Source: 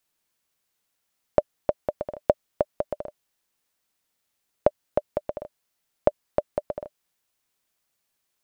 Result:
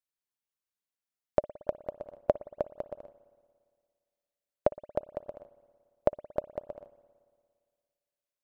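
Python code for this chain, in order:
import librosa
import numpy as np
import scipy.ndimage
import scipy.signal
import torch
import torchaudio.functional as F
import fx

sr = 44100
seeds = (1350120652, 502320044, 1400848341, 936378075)

y = fx.rev_spring(x, sr, rt60_s=2.0, pass_ms=(57,), chirp_ms=35, drr_db=9.0)
y = fx.upward_expand(y, sr, threshold_db=-42.0, expansion=1.5)
y = y * 10.0 ** (-5.0 / 20.0)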